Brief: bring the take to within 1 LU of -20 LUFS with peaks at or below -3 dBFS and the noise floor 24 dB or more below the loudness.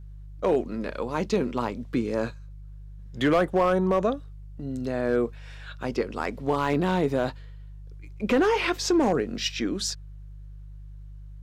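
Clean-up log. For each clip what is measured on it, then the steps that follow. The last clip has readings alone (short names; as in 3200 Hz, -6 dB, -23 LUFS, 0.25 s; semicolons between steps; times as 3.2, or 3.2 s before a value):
clipped 0.6%; flat tops at -15.0 dBFS; hum 50 Hz; harmonics up to 150 Hz; hum level -39 dBFS; loudness -26.5 LUFS; peak -15.0 dBFS; loudness target -20.0 LUFS
-> clip repair -15 dBFS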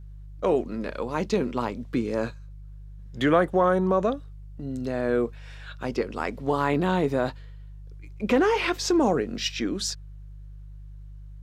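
clipped 0.0%; hum 50 Hz; harmonics up to 150 Hz; hum level -39 dBFS
-> de-hum 50 Hz, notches 3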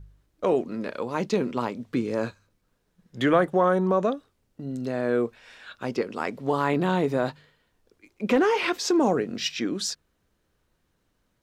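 hum none; loudness -26.0 LUFS; peak -7.0 dBFS; loudness target -20.0 LUFS
-> gain +6 dB; limiter -3 dBFS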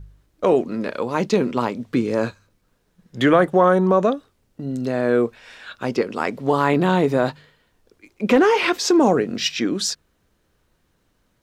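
loudness -20.0 LUFS; peak -3.0 dBFS; noise floor -66 dBFS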